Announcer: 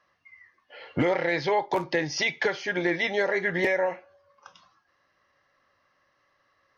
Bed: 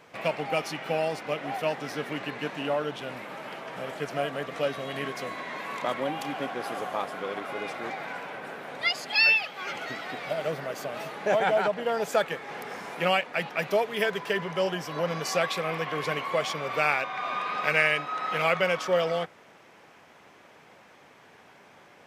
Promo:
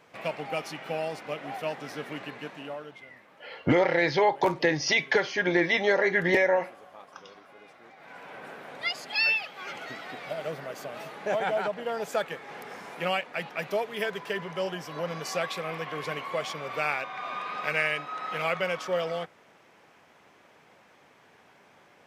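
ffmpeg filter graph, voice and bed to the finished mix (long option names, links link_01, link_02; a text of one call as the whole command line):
ffmpeg -i stem1.wav -i stem2.wav -filter_complex "[0:a]adelay=2700,volume=2dB[link_01];[1:a]volume=10dB,afade=type=out:start_time=2.17:duration=0.89:silence=0.199526,afade=type=in:start_time=7.96:duration=0.46:silence=0.199526[link_02];[link_01][link_02]amix=inputs=2:normalize=0" out.wav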